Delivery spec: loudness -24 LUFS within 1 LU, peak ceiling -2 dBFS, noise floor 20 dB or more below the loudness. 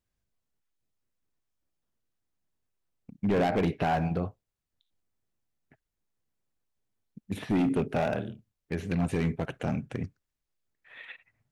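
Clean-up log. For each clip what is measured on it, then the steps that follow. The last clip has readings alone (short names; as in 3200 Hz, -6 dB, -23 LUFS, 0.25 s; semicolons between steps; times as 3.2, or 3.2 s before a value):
clipped 1.0%; flat tops at -21.0 dBFS; loudness -30.0 LUFS; peak -21.0 dBFS; loudness target -24.0 LUFS
-> clip repair -21 dBFS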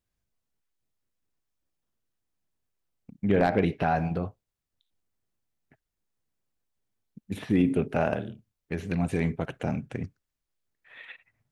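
clipped 0.0%; loudness -28.0 LUFS; peak -12.0 dBFS; loudness target -24.0 LUFS
-> gain +4 dB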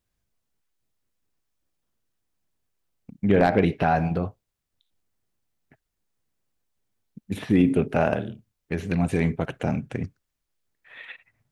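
loudness -24.0 LUFS; peak -8.0 dBFS; noise floor -81 dBFS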